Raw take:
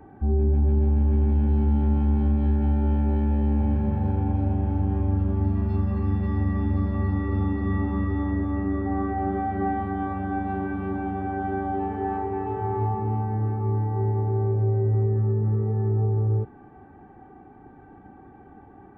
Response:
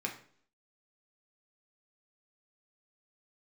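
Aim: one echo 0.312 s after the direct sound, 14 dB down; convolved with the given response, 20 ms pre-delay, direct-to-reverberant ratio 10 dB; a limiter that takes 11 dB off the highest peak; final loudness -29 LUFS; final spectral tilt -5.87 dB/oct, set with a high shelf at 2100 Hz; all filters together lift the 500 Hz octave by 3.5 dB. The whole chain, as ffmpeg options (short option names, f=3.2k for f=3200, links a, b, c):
-filter_complex "[0:a]equalizer=f=500:t=o:g=5.5,highshelf=f=2.1k:g=-8,alimiter=limit=-23dB:level=0:latency=1,aecho=1:1:312:0.2,asplit=2[a][b];[1:a]atrim=start_sample=2205,adelay=20[c];[b][c]afir=irnorm=-1:irlink=0,volume=-13dB[d];[a][d]amix=inputs=2:normalize=0,volume=1dB"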